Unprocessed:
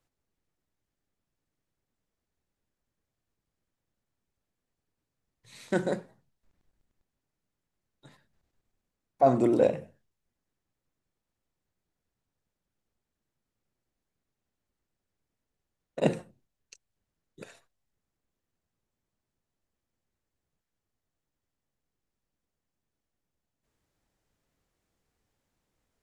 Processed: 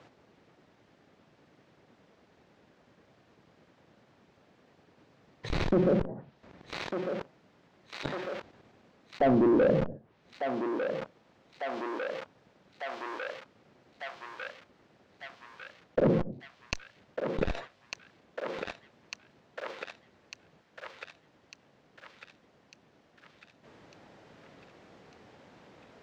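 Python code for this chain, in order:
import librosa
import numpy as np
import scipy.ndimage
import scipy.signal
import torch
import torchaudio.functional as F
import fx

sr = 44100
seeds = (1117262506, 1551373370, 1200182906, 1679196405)

p1 = scipy.signal.sosfilt(scipy.signal.butter(2, 150.0, 'highpass', fs=sr, output='sos'), x)
p2 = fx.env_lowpass_down(p1, sr, base_hz=470.0, full_db=-34.5)
p3 = fx.peak_eq(p2, sr, hz=590.0, db=3.0, octaves=1.1)
p4 = fx.leveller(p3, sr, passes=3)
p5 = fx.schmitt(p4, sr, flips_db=-36.5)
p6 = p4 + F.gain(torch.from_numpy(p5), -5.5).numpy()
p7 = fx.air_absorb(p6, sr, metres=200.0)
p8 = p7 + fx.echo_thinned(p7, sr, ms=1200, feedback_pct=58, hz=1000.0, wet_db=-21.0, dry=0)
p9 = fx.env_flatten(p8, sr, amount_pct=70)
y = F.gain(torch.from_numpy(p9), -7.5).numpy()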